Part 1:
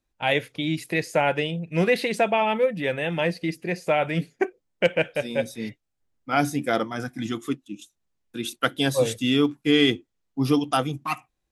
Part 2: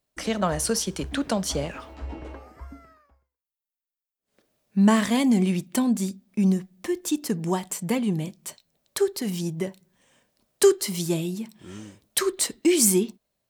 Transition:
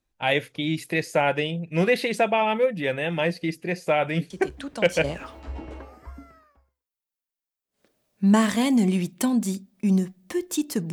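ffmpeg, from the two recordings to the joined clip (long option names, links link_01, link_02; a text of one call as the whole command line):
ffmpeg -i cue0.wav -i cue1.wav -filter_complex "[1:a]asplit=2[link_01][link_02];[0:a]apad=whole_dur=10.92,atrim=end=10.92,atrim=end=5.042[link_03];[link_02]atrim=start=1.578:end=7.46[link_04];[link_01]atrim=start=0.84:end=1.58,asetpts=PTS-STARTPTS,volume=-8.5dB,afade=type=in:duration=0.004:curve=hsin,afade=type=out:start_time=0.736:duration=0.004:curve=hsin,adelay=4300[link_05];[link_03][link_04]acrossfade=duration=0.004:curve1=hsin:curve2=hsin[link_06];[link_06][link_05]amix=inputs=2:normalize=0" out.wav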